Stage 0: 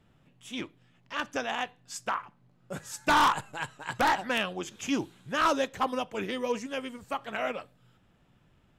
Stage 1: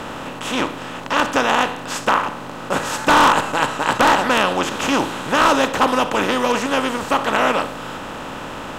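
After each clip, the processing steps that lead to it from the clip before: spectral levelling over time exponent 0.4; trim +6 dB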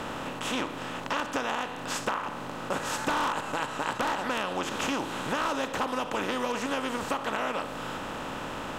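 compression, threshold -21 dBFS, peak gain reduction 10.5 dB; trim -5.5 dB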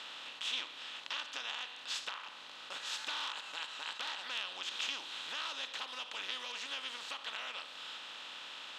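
band-pass filter 3.7 kHz, Q 2.5; trim +2 dB

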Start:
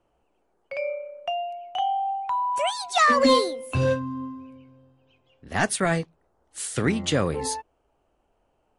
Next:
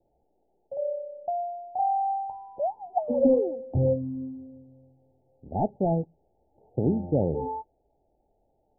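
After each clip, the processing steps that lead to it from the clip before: Chebyshev low-pass 880 Hz, order 10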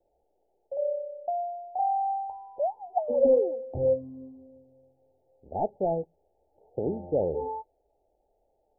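graphic EQ 125/250/500 Hz -9/-6/+6 dB; trim -3 dB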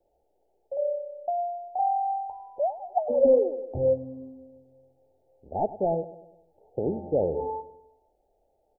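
feedback delay 100 ms, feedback 52%, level -15.5 dB; trim +1.5 dB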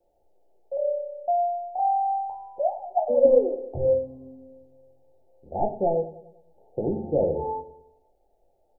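simulated room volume 130 m³, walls furnished, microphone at 0.86 m

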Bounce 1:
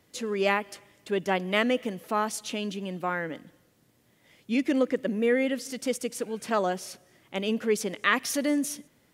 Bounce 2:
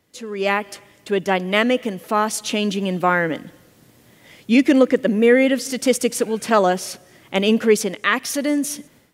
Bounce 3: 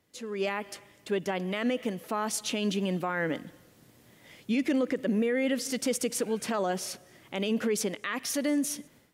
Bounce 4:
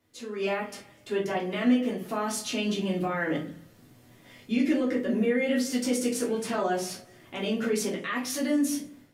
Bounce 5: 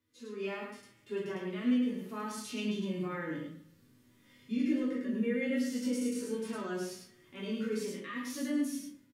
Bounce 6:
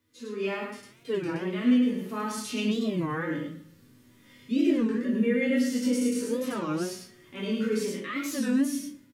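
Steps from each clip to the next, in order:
level rider gain up to 15 dB; trim -1 dB
peak limiter -13 dBFS, peak gain reduction 11 dB; trim -6.5 dB
simulated room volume 210 m³, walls furnished, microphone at 3.2 m; trim -5.5 dB
peaking EQ 700 Hz -13.5 dB 0.45 oct; delay 105 ms -5.5 dB; harmonic-percussive split percussive -18 dB; trim -6.5 dB
warped record 33 1/3 rpm, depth 250 cents; trim +7 dB

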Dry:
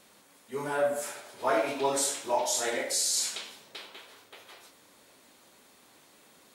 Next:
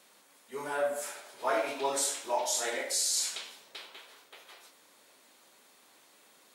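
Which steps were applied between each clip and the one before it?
high-pass 430 Hz 6 dB/octave; trim -1.5 dB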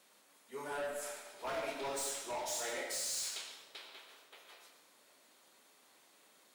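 overload inside the chain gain 31 dB; on a send at -6.5 dB: reverberation RT60 0.75 s, pre-delay 60 ms; on the sum: trim -5.5 dB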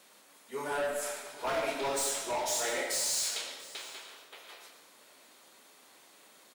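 delay 689 ms -18.5 dB; trim +7 dB

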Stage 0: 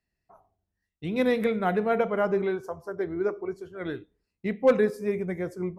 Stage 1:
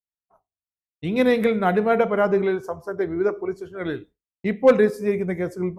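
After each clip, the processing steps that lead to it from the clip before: expander -45 dBFS; trim +5.5 dB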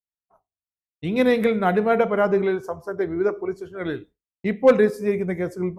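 no audible change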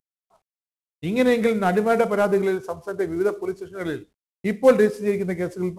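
CVSD coder 64 kbps

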